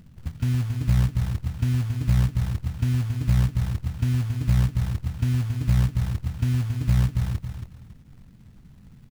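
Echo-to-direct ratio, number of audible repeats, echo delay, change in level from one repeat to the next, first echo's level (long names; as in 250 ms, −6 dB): −7.0 dB, 2, 275 ms, −10.0 dB, −7.5 dB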